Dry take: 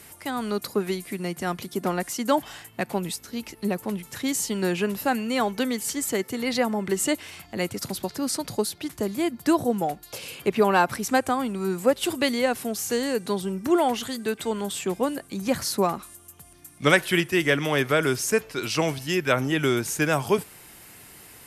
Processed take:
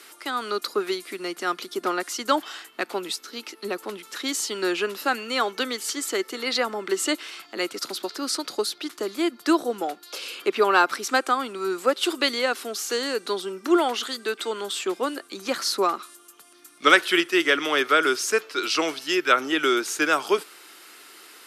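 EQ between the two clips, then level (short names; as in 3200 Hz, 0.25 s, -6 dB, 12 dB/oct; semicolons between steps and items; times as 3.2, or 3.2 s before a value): ladder high-pass 290 Hz, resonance 50%; bell 1300 Hz +12 dB 0.57 oct; bell 4000 Hz +12.5 dB 1.8 oct; +3.0 dB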